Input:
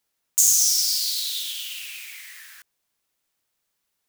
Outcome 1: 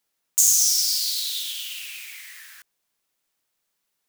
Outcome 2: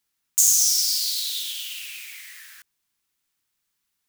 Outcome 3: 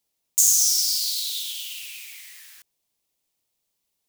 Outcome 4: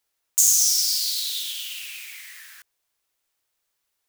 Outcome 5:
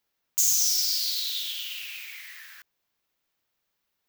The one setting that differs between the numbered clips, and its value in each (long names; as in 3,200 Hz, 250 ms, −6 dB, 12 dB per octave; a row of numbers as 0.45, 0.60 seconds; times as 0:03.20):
parametric band, centre frequency: 63, 580, 1,500, 190, 9,200 Hertz